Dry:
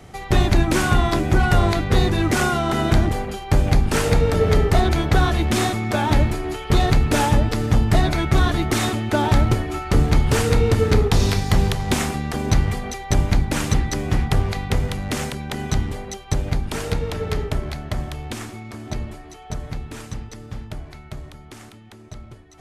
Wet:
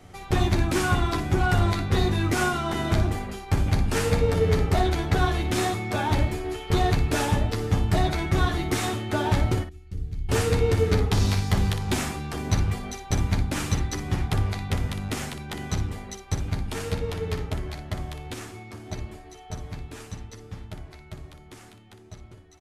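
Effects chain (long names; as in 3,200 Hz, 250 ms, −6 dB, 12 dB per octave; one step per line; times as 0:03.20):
0:09.63–0:10.29: guitar amp tone stack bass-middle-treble 10-0-1
on a send: ambience of single reflections 11 ms −3 dB, 60 ms −8.5 dB
on the sum: level −7 dB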